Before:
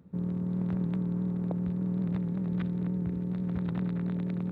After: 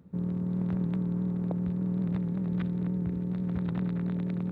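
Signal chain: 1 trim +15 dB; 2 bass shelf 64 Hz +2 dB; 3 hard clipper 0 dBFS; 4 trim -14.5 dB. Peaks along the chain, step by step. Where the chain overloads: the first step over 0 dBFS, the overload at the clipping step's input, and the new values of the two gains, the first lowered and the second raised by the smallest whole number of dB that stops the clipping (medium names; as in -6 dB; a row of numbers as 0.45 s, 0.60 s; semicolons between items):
-4.5 dBFS, -4.5 dBFS, -4.5 dBFS, -19.0 dBFS; nothing clips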